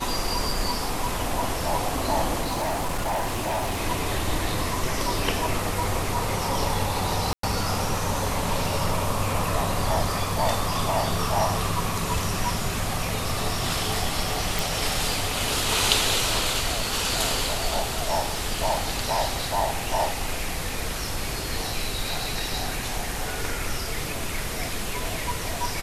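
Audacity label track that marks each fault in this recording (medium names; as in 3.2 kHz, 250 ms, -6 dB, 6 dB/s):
2.410000	3.810000	clipped -22.5 dBFS
7.330000	7.430000	dropout 103 ms
14.590000	14.590000	pop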